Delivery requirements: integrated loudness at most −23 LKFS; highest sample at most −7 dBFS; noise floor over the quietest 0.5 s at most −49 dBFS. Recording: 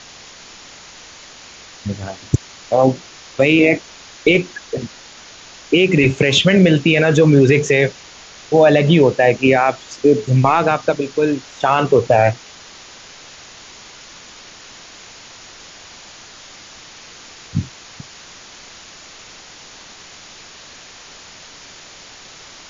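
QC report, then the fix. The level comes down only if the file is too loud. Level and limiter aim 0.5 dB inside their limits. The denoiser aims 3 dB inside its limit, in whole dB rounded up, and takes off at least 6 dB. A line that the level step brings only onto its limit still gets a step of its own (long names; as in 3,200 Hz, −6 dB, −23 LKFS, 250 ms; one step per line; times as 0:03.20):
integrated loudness −15.0 LKFS: out of spec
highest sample −2.0 dBFS: out of spec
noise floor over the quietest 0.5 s −40 dBFS: out of spec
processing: broadband denoise 6 dB, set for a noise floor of −40 dBFS
level −8.5 dB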